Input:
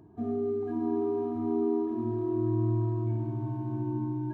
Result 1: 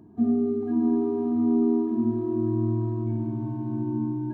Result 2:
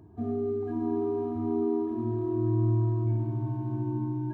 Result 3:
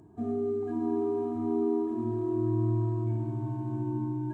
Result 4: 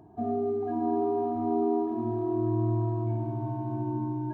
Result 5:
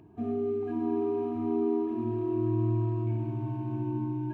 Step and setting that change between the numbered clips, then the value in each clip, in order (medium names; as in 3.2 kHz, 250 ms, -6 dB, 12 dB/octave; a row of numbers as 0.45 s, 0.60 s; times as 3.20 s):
peaking EQ, frequency: 230 Hz, 82 Hz, 7.8 kHz, 740 Hz, 2.6 kHz